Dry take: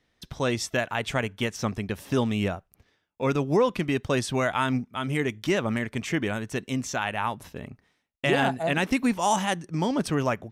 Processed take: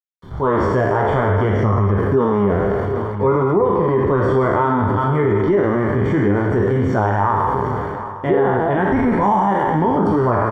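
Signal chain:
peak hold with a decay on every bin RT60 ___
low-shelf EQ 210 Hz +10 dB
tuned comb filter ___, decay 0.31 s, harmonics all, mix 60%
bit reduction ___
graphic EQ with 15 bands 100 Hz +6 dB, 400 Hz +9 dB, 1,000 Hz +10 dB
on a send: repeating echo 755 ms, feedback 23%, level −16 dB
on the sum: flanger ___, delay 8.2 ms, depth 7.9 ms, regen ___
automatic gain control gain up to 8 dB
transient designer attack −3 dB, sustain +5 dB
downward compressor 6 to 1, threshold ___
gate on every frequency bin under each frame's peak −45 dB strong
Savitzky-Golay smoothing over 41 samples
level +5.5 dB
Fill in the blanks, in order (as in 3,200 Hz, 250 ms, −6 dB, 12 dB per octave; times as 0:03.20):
1.68 s, 100 Hz, 7 bits, 0.58 Hz, −35%, −18 dBFS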